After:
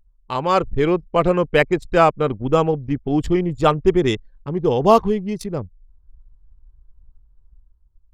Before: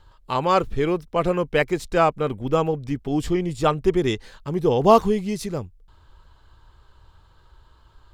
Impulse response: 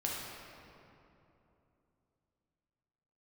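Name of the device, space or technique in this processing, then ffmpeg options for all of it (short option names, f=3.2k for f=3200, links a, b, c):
voice memo with heavy noise removal: -af "anlmdn=15.8,dynaudnorm=f=190:g=7:m=9dB,volume=-1dB"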